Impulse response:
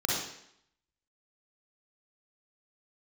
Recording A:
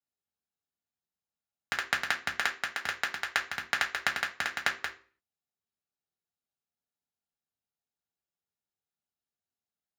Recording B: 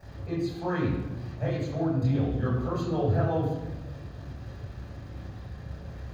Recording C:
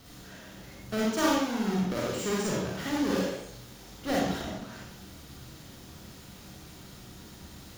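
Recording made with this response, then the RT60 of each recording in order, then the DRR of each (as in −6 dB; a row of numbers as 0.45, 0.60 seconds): C; 0.45, 1.1, 0.70 seconds; 0.0, −7.5, −4.5 decibels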